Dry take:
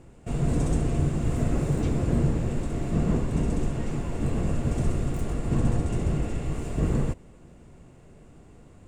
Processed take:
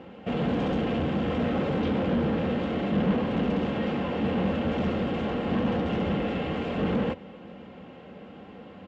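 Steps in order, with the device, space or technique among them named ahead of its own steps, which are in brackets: comb 3.8 ms, depth 52%; overdrive pedal into a guitar cabinet (overdrive pedal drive 28 dB, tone 1.4 kHz, clips at -11 dBFS; cabinet simulation 79–4500 Hz, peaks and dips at 83 Hz +5 dB, 190 Hz +9 dB, 300 Hz -4 dB, 420 Hz +3 dB, 1.1 kHz -3 dB, 3.1 kHz +8 dB); trim -7.5 dB

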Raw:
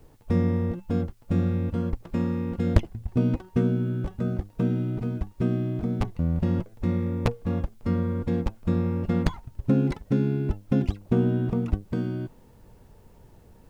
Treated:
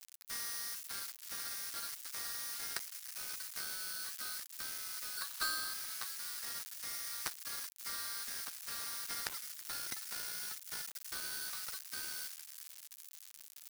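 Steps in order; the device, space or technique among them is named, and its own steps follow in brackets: 5.17–5.74 s: high-order bell 1.2 kHz +13 dB 1.1 oct; steep high-pass 1.4 kHz 36 dB/octave; frequency-shifting echo 324 ms, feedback 62%, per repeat +39 Hz, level -22.5 dB; budget class-D amplifier (dead-time distortion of 0.2 ms; zero-crossing glitches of -35.5 dBFS); trim +7.5 dB

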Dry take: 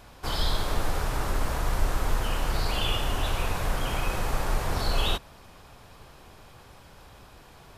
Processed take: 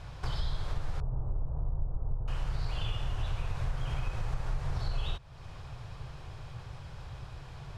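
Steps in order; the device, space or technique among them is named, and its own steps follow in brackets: 1.00–2.28 s: Bessel low-pass 620 Hz, order 6; jukebox (low-pass 6.4 kHz 12 dB/octave; resonant low shelf 170 Hz +7.5 dB, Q 3; compression 3:1, threshold -33 dBFS, peak gain reduction 17.5 dB)

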